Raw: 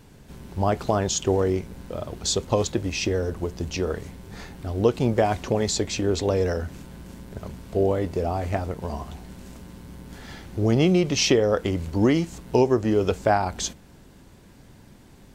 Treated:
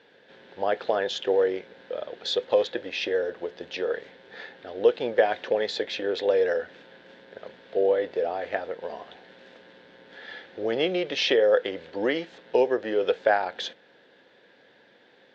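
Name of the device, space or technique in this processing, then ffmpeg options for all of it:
phone earpiece: -af "highpass=460,equalizer=f=500:t=q:w=4:g=10,equalizer=f=1100:t=q:w=4:g=-7,equalizer=f=1700:t=q:w=4:g=10,equalizer=f=3500:t=q:w=4:g=7,lowpass=f=4100:w=0.5412,lowpass=f=4100:w=1.3066,volume=0.75"

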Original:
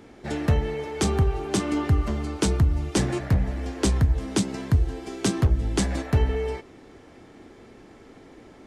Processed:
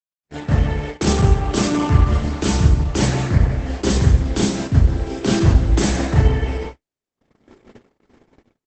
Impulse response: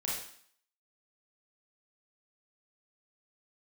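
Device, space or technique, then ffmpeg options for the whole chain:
speakerphone in a meeting room: -filter_complex "[0:a]asettb=1/sr,asplit=3[s0][s1][s2];[s0]atrim=end=5.034[s3];[s1]atrim=start=5.03:end=5.49,asetpts=PTS-STARTPTS,afade=t=in:d=0.004:c=qsin,afade=t=out:st=0.456:d=0.004:c=qsin,acrossover=split=7200[s4][s5];[s5]acompressor=threshold=0.00501:ratio=4:attack=1:release=60[s6];[s4][s6]amix=inputs=2:normalize=0[s7];[s2]atrim=start=5.486[s8];[s3][s7]acrossfade=d=0.004:c1=hsin:c2=qsin[s9];[s9][s8]acrossfade=d=0.004:c1=qsin:c2=hsin,asplit=2[s10][s11];[s11]adelay=169.1,volume=0.251,highshelf=f=4000:g=-3.8[s12];[s10][s12]amix=inputs=2:normalize=0[s13];[1:a]atrim=start_sample=2205[s14];[s13][s14]afir=irnorm=-1:irlink=0,dynaudnorm=f=220:g=5:m=5.62,agate=range=0.00112:threshold=0.0562:ratio=16:detection=peak,volume=0.891" -ar 48000 -c:a libopus -b:a 12k

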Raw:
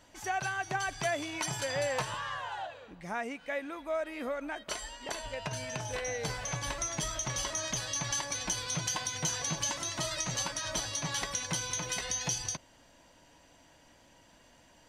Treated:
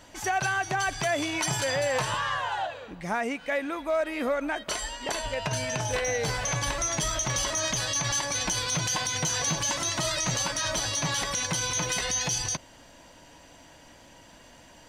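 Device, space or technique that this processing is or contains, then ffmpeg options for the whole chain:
limiter into clipper: -af "alimiter=level_in=1.33:limit=0.0631:level=0:latency=1:release=40,volume=0.75,asoftclip=type=hard:threshold=0.0398,volume=2.66"

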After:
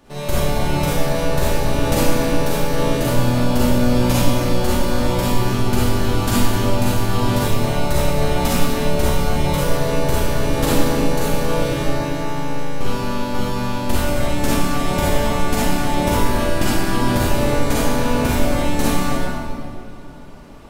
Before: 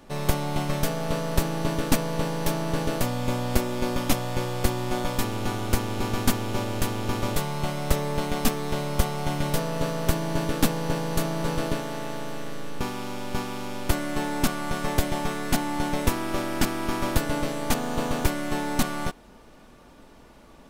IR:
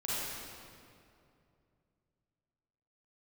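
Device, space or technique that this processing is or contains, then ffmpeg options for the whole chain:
stairwell: -filter_complex "[1:a]atrim=start_sample=2205[s0];[0:a][s0]afir=irnorm=-1:irlink=0,volume=1.26"

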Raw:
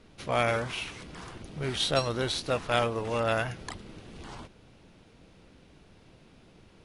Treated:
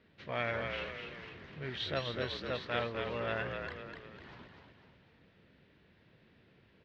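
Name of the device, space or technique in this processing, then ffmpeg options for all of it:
frequency-shifting delay pedal into a guitar cabinet: -filter_complex "[0:a]asplit=7[s0][s1][s2][s3][s4][s5][s6];[s1]adelay=250,afreqshift=-45,volume=0.562[s7];[s2]adelay=500,afreqshift=-90,volume=0.26[s8];[s3]adelay=750,afreqshift=-135,volume=0.119[s9];[s4]adelay=1000,afreqshift=-180,volume=0.055[s10];[s5]adelay=1250,afreqshift=-225,volume=0.0251[s11];[s6]adelay=1500,afreqshift=-270,volume=0.0116[s12];[s0][s7][s8][s9][s10][s11][s12]amix=inputs=7:normalize=0,highpass=77,equalizer=f=300:t=q:w=4:g=-3,equalizer=f=790:t=q:w=4:g=-5,equalizer=f=1200:t=q:w=4:g=-3,equalizer=f=1800:t=q:w=4:g=8,lowpass=f=4100:w=0.5412,lowpass=f=4100:w=1.3066,volume=0.376"

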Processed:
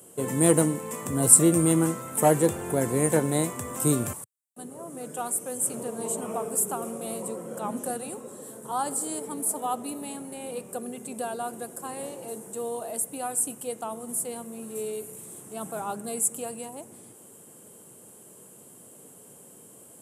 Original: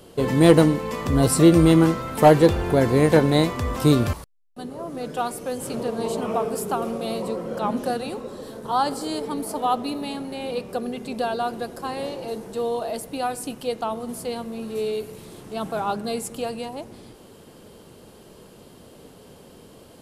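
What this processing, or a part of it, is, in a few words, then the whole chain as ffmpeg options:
budget condenser microphone: -af "highpass=f=110:w=0.5412,highpass=f=110:w=1.3066,highshelf=f=6200:t=q:w=3:g=11.5,volume=0.447"

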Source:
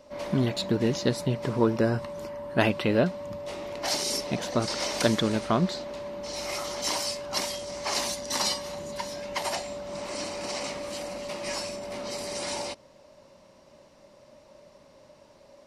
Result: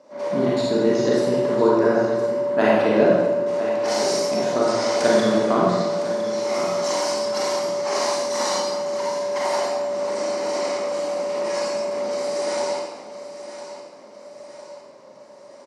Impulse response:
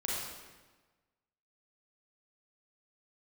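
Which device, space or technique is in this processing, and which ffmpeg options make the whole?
supermarket ceiling speaker: -filter_complex "[0:a]highpass=280,lowpass=6400[s0];[1:a]atrim=start_sample=2205[s1];[s0][s1]afir=irnorm=-1:irlink=0,equalizer=f=3100:w=0.96:g=-10,aecho=1:1:1008|2016|3024|4032|5040:0.237|0.111|0.0524|0.0246|0.0116,volume=1.68"

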